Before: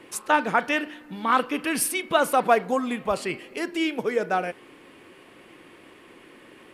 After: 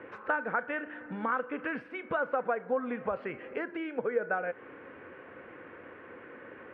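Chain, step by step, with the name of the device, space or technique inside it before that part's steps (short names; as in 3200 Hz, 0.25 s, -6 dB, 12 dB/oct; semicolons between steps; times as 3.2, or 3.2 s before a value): bass amplifier (compressor 5:1, threshold -32 dBFS, peak gain reduction 16.5 dB; speaker cabinet 60–2100 Hz, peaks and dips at 85 Hz +6 dB, 170 Hz -3 dB, 350 Hz -4 dB, 500 Hz +8 dB, 1500 Hz +9 dB)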